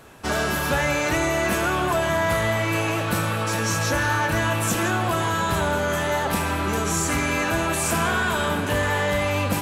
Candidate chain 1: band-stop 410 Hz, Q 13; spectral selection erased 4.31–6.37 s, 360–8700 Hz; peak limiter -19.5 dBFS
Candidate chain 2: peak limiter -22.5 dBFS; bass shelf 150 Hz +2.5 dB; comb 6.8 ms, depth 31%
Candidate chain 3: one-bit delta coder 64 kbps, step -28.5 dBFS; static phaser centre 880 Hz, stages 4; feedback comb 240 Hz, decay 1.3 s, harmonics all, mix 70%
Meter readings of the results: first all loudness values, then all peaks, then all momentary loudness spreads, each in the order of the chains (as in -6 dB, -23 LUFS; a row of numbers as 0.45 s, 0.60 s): -27.0 LUFS, -28.0 LUFS, -36.0 LUFS; -19.5 dBFS, -19.5 dBFS, -23.0 dBFS; 4 LU, 2 LU, 2 LU